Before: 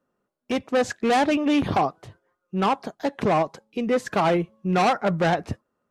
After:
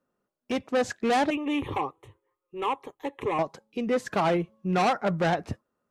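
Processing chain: 1.3–3.39 fixed phaser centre 1000 Hz, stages 8; gain -3.5 dB

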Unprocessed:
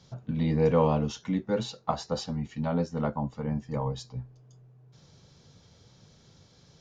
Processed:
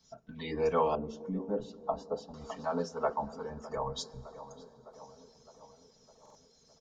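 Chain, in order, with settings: spectral noise reduction 14 dB; comb 4.5 ms, depth 99%; de-hum 55.66 Hz, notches 10; tape echo 0.609 s, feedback 65%, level -16 dB, low-pass 1800 Hz; plate-style reverb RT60 3.8 s, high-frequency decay 0.85×, DRR 17.5 dB; harmonic-percussive split harmonic -11 dB; in parallel at -1 dB: compressor, threshold -50 dBFS, peak gain reduction 26 dB; 0.95–2.34 on the sum: EQ curve 340 Hz 0 dB, 730 Hz -5 dB, 2000 Hz -19 dB; stuck buffer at 6.21, samples 2048, times 2

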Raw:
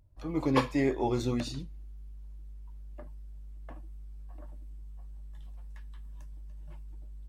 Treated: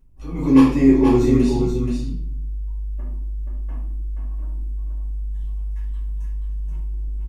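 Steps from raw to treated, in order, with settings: fifteen-band EQ 250 Hz +4 dB, 630 Hz -8 dB, 1600 Hz -8 dB, 4000 Hz -7 dB; on a send: echo 0.478 s -5.5 dB; on the sum: shoebox room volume 89 m³, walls mixed, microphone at 2.4 m; gain -1 dB

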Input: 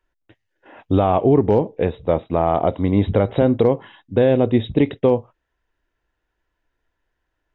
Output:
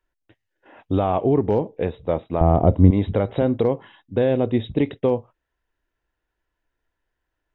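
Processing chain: 2.41–2.91 tilt -4.5 dB/oct; gain -4 dB

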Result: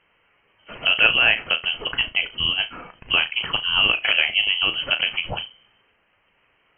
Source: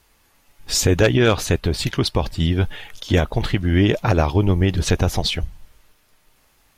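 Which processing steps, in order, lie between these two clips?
HPF 230 Hz 6 dB/oct; flutter echo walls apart 6.3 m, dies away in 0.2 s; inverted band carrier 3100 Hz

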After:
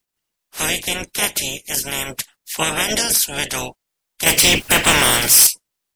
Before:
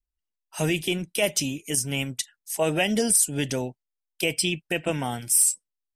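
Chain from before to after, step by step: spectral limiter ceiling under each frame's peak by 29 dB; 4.26–5.47 power-law curve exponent 0.5; gain +4 dB

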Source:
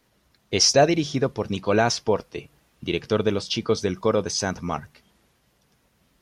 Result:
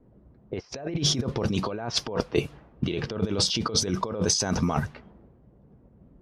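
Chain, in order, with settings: negative-ratio compressor -32 dBFS, ratio -1; low-pass opened by the level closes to 380 Hz, open at -24.5 dBFS; dynamic EQ 2100 Hz, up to -4 dB, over -47 dBFS, Q 1.3; gain +4.5 dB

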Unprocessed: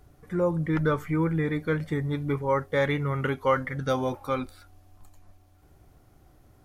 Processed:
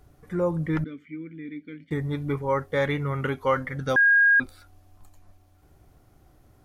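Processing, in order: 0.84–1.91 vowel filter i; 3.96–4.4 bleep 1630 Hz -14.5 dBFS

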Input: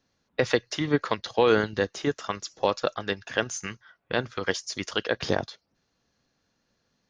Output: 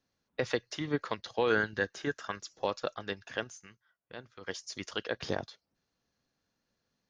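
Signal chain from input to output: 1.5–2.39 bell 1600 Hz +11.5 dB 0.26 oct; 3.35–4.62 dip -11 dB, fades 0.24 s; gain -8 dB

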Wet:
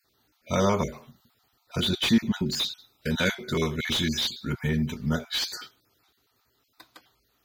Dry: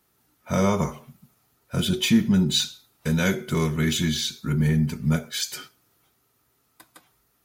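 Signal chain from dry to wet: random spectral dropouts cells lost 26%; fifteen-band EQ 160 Hz -7 dB, 4000 Hz +8 dB, 10000 Hz -11 dB; slew limiter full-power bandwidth 240 Hz

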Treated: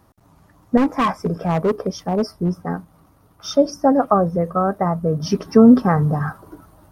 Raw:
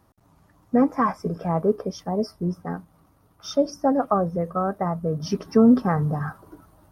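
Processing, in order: 0.77–2.55 hard clip -19 dBFS, distortion -15 dB; gain +5.5 dB

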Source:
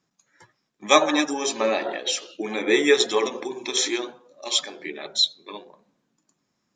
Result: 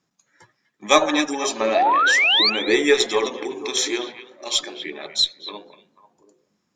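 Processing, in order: added harmonics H 6 -34 dB, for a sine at -2 dBFS; painted sound rise, 1.75–2.5, 630–4800 Hz -18 dBFS; delay with a stepping band-pass 0.244 s, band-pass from 2500 Hz, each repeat -1.4 oct, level -10 dB; gain +1 dB

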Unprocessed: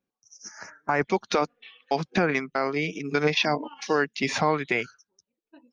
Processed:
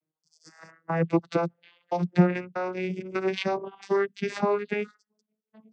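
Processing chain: vocoder on a gliding note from D#3, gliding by +6 st

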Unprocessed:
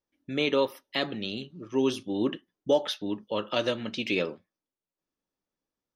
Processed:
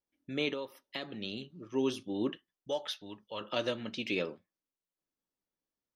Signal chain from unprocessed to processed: 0.49–1.22 compressor 6:1, threshold -30 dBFS, peak gain reduction 10 dB; 2.32–3.41 bell 270 Hz -11 dB 2.3 oct; gain -5.5 dB

